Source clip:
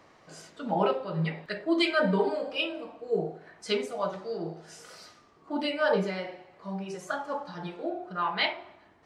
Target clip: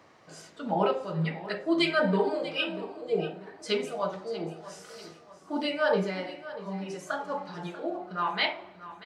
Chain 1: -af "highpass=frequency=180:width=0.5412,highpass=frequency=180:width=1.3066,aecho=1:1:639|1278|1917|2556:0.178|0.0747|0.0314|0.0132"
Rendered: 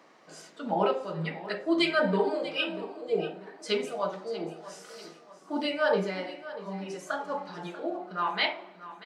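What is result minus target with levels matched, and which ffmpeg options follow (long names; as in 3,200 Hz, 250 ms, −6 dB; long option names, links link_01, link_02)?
125 Hz band −3.5 dB
-af "highpass=frequency=63:width=0.5412,highpass=frequency=63:width=1.3066,aecho=1:1:639|1278|1917|2556:0.178|0.0747|0.0314|0.0132"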